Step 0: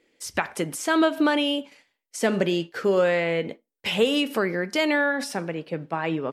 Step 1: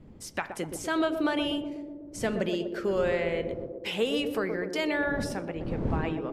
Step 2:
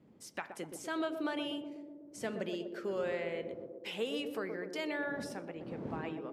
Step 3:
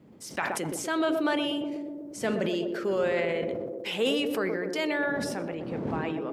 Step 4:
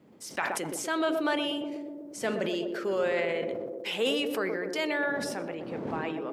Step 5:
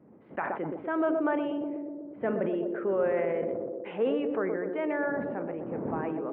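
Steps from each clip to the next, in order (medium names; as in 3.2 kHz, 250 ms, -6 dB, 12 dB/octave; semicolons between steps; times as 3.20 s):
wind noise 220 Hz -33 dBFS; band-passed feedback delay 123 ms, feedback 77%, band-pass 400 Hz, level -5.5 dB; trim -7 dB
high-pass 170 Hz 12 dB/octave; trim -8.5 dB
decay stretcher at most 22 dB/s; trim +8 dB
bass shelf 180 Hz -10.5 dB
Gaussian low-pass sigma 5.2 samples; trim +2 dB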